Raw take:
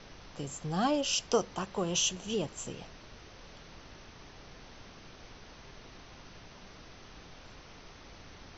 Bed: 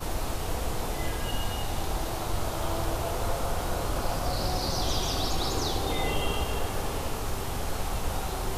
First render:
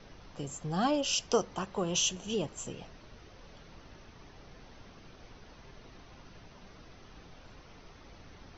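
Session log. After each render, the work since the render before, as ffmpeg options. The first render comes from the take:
-af "afftdn=nr=6:nf=-53"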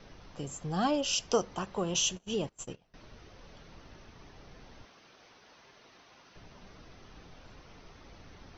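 -filter_complex "[0:a]asettb=1/sr,asplit=3[a][b][c];[a]atrim=end=1.944[d];[b]atrim=start=1.94:end=2.94,asetpts=PTS-STARTPTS,afade=t=in:d=0.004:c=qsin,afade=t=out:st=0.996:d=0.004:c=qsin,agate=range=-22dB:threshold=-42dB:ratio=16:release=100:detection=peak[e];[c]atrim=start=2.936[f];[d][e]acrossfade=d=0.004:c1=hsin:c2=qsin[g];[g][f]acrossfade=d=0.004:c1=qsin:c2=hsin,asettb=1/sr,asplit=3[h][i][j];[h]atrim=end=4.854[k];[i]atrim=start=4.85:end=6.36,asetpts=PTS-STARTPTS,afade=t=in:d=0.004:c=qsin,afade=t=out:st=1.506:d=0.004:c=qsin,highpass=f=650:p=1[l];[j]atrim=start=6.356[m];[k][l]acrossfade=d=0.004:c1=hsin:c2=qsin[n];[n][m]acrossfade=d=0.004:c1=qsin:c2=hsin"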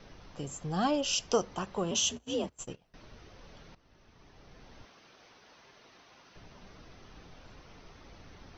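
-filter_complex "[0:a]asettb=1/sr,asplit=3[a][b][c];[a]atrim=end=1.914[d];[b]atrim=start=1.91:end=2.56,asetpts=PTS-STARTPTS,afade=t=in:d=0.004:c=qsin,afade=t=out:st=0.646:d=0.004:c=qsin,afreqshift=54[e];[c]atrim=start=2.556[f];[d][e]acrossfade=d=0.004:c1=hsin:c2=qsin[g];[g][f]acrossfade=d=0.004:c1=qsin:c2=hsin,asplit=2[h][i];[h]atrim=end=3.75,asetpts=PTS-STARTPTS,afade=t=out:st=3.746:d=0.004:c=hsin:silence=0.158489[j];[i]atrim=start=3.75,asetpts=PTS-STARTPTS,afade=t=in:d=1.08:silence=0.158489[k];[j][k]concat=n=2:v=0:a=1"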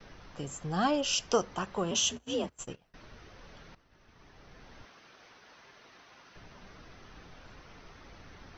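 -af "agate=range=-33dB:threshold=-59dB:ratio=3:detection=peak,equalizer=f=1.6k:w=1.2:g=4.5"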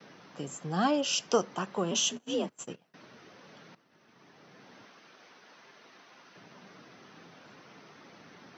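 -af "highpass=f=160:w=0.5412,highpass=f=160:w=1.3066,lowshelf=f=320:g=3.5"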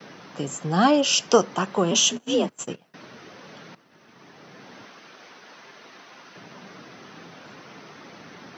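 -af "volume=9dB"

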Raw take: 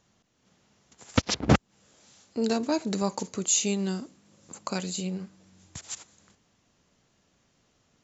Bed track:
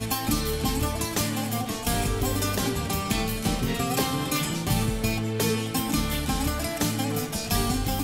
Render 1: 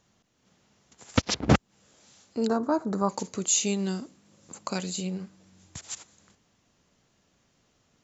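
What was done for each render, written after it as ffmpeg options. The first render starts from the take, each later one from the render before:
-filter_complex "[0:a]asettb=1/sr,asplit=3[a][b][c];[a]atrim=end=2.474[d];[b]atrim=start=2.47:end=3.09,asetpts=PTS-STARTPTS,afade=t=in:d=0.004:c=qsin,afade=t=out:st=0.616:d=0.004:c=qsin,highshelf=f=1.8k:t=q:w=3:g=-12[e];[c]atrim=start=3.086[f];[d][e]acrossfade=d=0.004:c1=hsin:c2=qsin[g];[g][f]acrossfade=d=0.004:c1=qsin:c2=hsin"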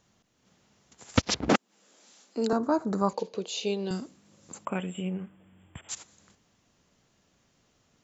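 -filter_complex "[0:a]asettb=1/sr,asplit=3[a][b][c];[a]atrim=end=1.494[d];[b]atrim=start=1.49:end=2.53,asetpts=PTS-STARTPTS,afade=t=in:d=0.004:c=qsin,afade=t=out:st=1.036:d=0.004:c=qsin,highpass=f=220:w=0.5412,highpass=f=220:w=1.3066[e];[c]atrim=start=2.526[f];[d][e]acrossfade=d=0.004:c1=hsin:c2=qsin[g];[g][f]acrossfade=d=0.004:c1=qsin:c2=hsin,asettb=1/sr,asplit=3[h][i][j];[h]atrim=end=3.134[k];[i]atrim=start=3.13:end=3.91,asetpts=PTS-STARTPTS,afade=t=in:d=0.004:c=qsin,afade=t=out:st=0.776:d=0.004:c=qsin,highpass=250,equalizer=f=280:t=q:w=4:g=-8,equalizer=f=470:t=q:w=4:g=10,equalizer=f=1.3k:t=q:w=4:g=-10,equalizer=f=2k:t=q:w=4:g=-10,lowpass=f=4.3k:w=0.5412,lowpass=f=4.3k:w=1.3066[l];[j]atrim=start=3.906[m];[k][l]acrossfade=d=0.004:c1=hsin:c2=qsin[n];[n][m]acrossfade=d=0.004:c1=qsin:c2=hsin,asettb=1/sr,asplit=3[o][p][q];[o]atrim=end=4.654[r];[p]atrim=start=4.65:end=5.89,asetpts=PTS-STARTPTS,afade=t=in:d=0.004:c=qsin,afade=t=out:st=1.236:d=0.004:c=qsin,asuperstop=centerf=5200:order=20:qfactor=1.2[s];[q]atrim=start=5.886[t];[r][s]acrossfade=d=0.004:c1=hsin:c2=qsin[u];[u][t]acrossfade=d=0.004:c1=qsin:c2=hsin"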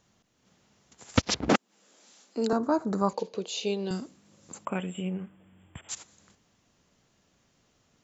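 -af anull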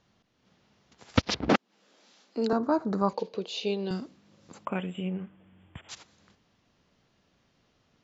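-af "lowpass=f=5.2k:w=0.5412,lowpass=f=5.2k:w=1.3066"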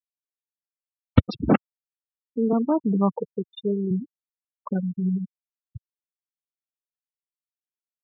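-af "afftfilt=real='re*gte(hypot(re,im),0.1)':imag='im*gte(hypot(re,im),0.1)':win_size=1024:overlap=0.75,equalizer=f=110:w=0.43:g=11"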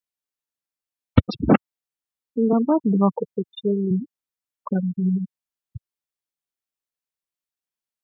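-af "volume=3dB,alimiter=limit=-1dB:level=0:latency=1"

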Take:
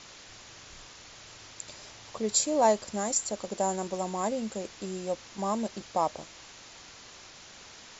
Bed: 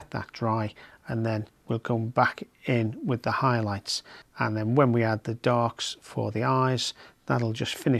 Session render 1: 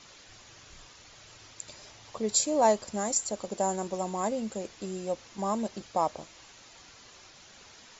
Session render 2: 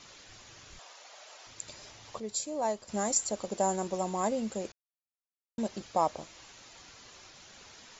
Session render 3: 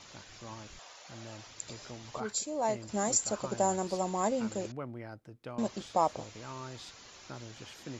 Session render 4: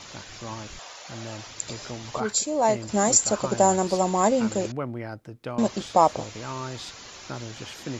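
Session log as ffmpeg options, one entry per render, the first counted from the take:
-af "afftdn=nr=6:nf=-50"
-filter_complex "[0:a]asettb=1/sr,asplit=3[a][b][c];[a]atrim=end=0.794[d];[b]atrim=start=0.79:end=1.47,asetpts=PTS-STARTPTS,afade=t=in:d=0.004:c=qsin,afade=t=out:st=0.676:d=0.004:c=qsin,highpass=f=650:t=q:w=2.4[e];[c]atrim=start=1.466[f];[d][e]acrossfade=d=0.004:c1=hsin:c2=qsin[g];[g][f]acrossfade=d=0.004:c1=qsin:c2=hsin,asplit=5[h][i][j][k][l];[h]atrim=end=2.202[m];[i]atrim=start=2.198:end=2.892,asetpts=PTS-STARTPTS,volume=-8.5dB[n];[j]atrim=start=2.888:end=4.72,asetpts=PTS-STARTPTS,afade=t=out:st=1.828:d=0.004:c=hsin[o];[k]atrim=start=4.72:end=5.58,asetpts=PTS-STARTPTS,volume=0[p];[l]atrim=start=5.58,asetpts=PTS-STARTPTS,afade=t=in:d=0.004:c=hsin[q];[m][n]acrossfade=d=0.004:c1=hsin:c2=hsin[r];[o][p][q]concat=n=3:v=0:a=1[s];[r][s]acrossfade=d=0.004:c1=hsin:c2=hsin"
-filter_complex "[1:a]volume=-20dB[a];[0:a][a]amix=inputs=2:normalize=0"
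-af "volume=9.5dB"

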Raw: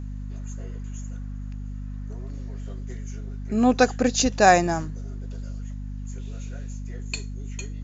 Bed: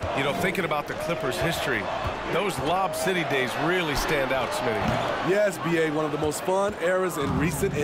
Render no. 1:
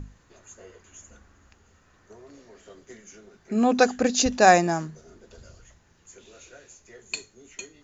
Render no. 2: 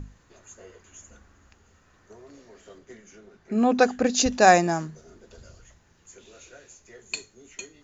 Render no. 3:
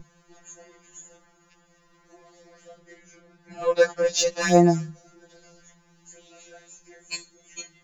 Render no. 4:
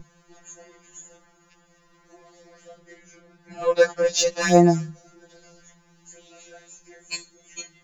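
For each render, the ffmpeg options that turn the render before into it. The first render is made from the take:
-af "bandreject=f=50:t=h:w=6,bandreject=f=100:t=h:w=6,bandreject=f=150:t=h:w=6,bandreject=f=200:t=h:w=6,bandreject=f=250:t=h:w=6"
-filter_complex "[0:a]asettb=1/sr,asplit=3[a][b][c];[a]atrim=end=2.784[d];[b]atrim=start=2.78:end=4.1,asetpts=PTS-STARTPTS,afade=t=in:d=0.004:c=qsin,afade=t=out:st=1.316:d=0.004:c=qsin,lowpass=f=3.7k:p=1[e];[c]atrim=start=4.096[f];[d][e]acrossfade=d=0.004:c1=hsin:c2=qsin[g];[g][f]acrossfade=d=0.004:c1=qsin:c2=hsin"
-filter_complex "[0:a]asplit=2[a][b];[b]asoftclip=type=hard:threshold=-18.5dB,volume=-9.5dB[c];[a][c]amix=inputs=2:normalize=0,afftfilt=real='re*2.83*eq(mod(b,8),0)':imag='im*2.83*eq(mod(b,8),0)':win_size=2048:overlap=0.75"
-af "volume=1.5dB"

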